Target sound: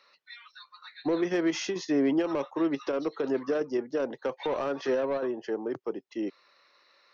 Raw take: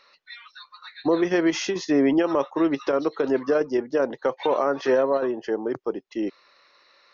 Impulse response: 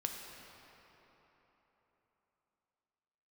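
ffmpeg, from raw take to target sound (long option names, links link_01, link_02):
-filter_complex "[0:a]highpass=82,acrossover=split=420|3100[link_01][link_02][link_03];[link_02]asoftclip=type=tanh:threshold=-23dB[link_04];[link_01][link_04][link_03]amix=inputs=3:normalize=0,volume=-5dB"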